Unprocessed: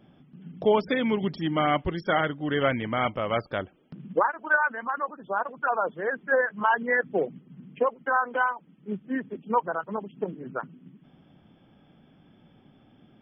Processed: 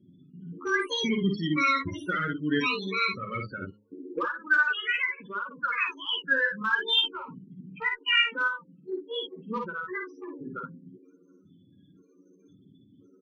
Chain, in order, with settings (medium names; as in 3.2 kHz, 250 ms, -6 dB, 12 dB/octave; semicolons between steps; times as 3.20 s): pitch shift switched off and on +10.5 st, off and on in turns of 520 ms; high-pass 82 Hz 24 dB/octave; treble shelf 3.1 kHz +9.5 dB; de-hum 104.6 Hz, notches 5; loudest bins only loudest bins 16; Chebyshev shaper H 2 -40 dB, 5 -30 dB, 7 -32 dB, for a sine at -9.5 dBFS; Butterworth band-stop 730 Hz, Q 0.77; distance through air 97 m; on a send: early reflections 11 ms -8.5 dB, 53 ms -5 dB, 63 ms -10 dB